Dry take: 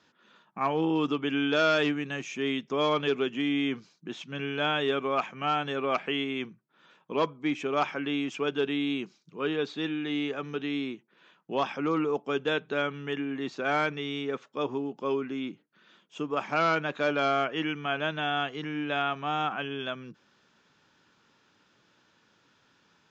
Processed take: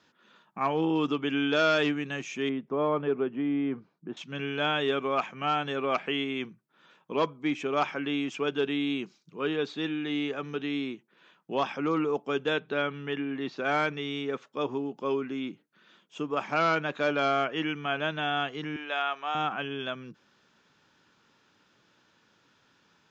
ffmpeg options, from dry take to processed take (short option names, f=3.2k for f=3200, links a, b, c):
-filter_complex "[0:a]asettb=1/sr,asplit=3[a][b][c];[a]atrim=end=2.494[d];[b]atrim=start=2.49:end=4.17,asetpts=PTS-STARTPTS,afade=t=in:d=0.004:c=qsin,afade=t=out:st=1.676:d=0.004:c=qsin,lowpass=1.2k[e];[c]atrim=start=4.166[f];[d][e]acrossfade=d=0.004:c1=hsin:c2=qsin[g];[g][f]acrossfade=d=0.004:c1=qsin:c2=hsin,asettb=1/sr,asplit=3[h][i][j];[h]atrim=end=12.594[k];[i]atrim=start=12.59:end=13.58,asetpts=PTS-STARTPTS,afade=t=in:d=0.004:c=qsin,afade=t=out:st=0.986:d=0.004:c=qsin,lowpass=f=5.4k:w=0.5412,lowpass=f=5.4k:w=1.3066[l];[j]atrim=start=13.576[m];[k][l]acrossfade=d=0.004:c1=hsin:c2=qsin[n];[n][m]acrossfade=d=0.004:c1=qsin:c2=hsin,asettb=1/sr,asplit=3[o][p][q];[o]atrim=end=18.764[r];[p]atrim=start=18.76:end=19.35,asetpts=PTS-STARTPTS,afade=t=in:d=0.004:c=qsin,afade=t=out:st=0.586:d=0.004:c=qsin,highpass=580[s];[q]atrim=start=19.346[t];[r][s]acrossfade=d=0.004:c1=hsin:c2=qsin[u];[u][t]acrossfade=d=0.004:c1=qsin:c2=hsin"